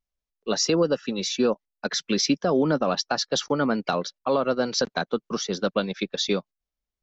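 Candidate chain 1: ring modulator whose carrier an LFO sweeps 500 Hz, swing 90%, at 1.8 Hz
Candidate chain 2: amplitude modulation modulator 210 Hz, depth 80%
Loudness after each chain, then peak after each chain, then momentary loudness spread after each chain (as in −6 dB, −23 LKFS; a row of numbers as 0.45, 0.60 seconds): −28.0, −29.0 LKFS; −10.5, −9.5 dBFS; 7, 7 LU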